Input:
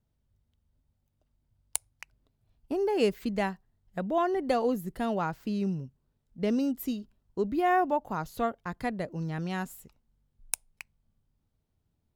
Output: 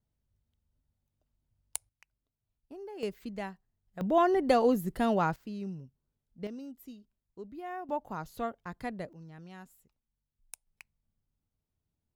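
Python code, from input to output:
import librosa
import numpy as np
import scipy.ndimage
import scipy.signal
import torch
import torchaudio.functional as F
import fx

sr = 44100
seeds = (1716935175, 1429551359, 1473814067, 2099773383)

y = fx.gain(x, sr, db=fx.steps((0.0, -5.5), (1.89, -16.0), (3.03, -9.0), (4.01, 2.5), (5.36, -8.5), (6.47, -15.5), (7.89, -5.5), (9.13, -15.5), (10.67, -8.5)))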